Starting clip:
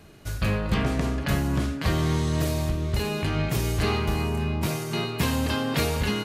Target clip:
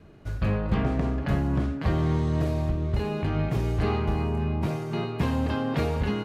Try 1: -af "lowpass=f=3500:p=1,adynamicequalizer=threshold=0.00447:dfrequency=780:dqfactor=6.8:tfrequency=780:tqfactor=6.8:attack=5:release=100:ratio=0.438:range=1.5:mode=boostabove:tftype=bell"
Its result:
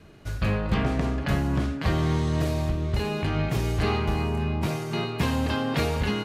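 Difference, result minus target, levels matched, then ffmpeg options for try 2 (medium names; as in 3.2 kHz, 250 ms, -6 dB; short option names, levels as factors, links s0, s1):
4 kHz band +6.5 dB
-af "lowpass=f=1100:p=1,adynamicequalizer=threshold=0.00447:dfrequency=780:dqfactor=6.8:tfrequency=780:tqfactor=6.8:attack=5:release=100:ratio=0.438:range=1.5:mode=boostabove:tftype=bell"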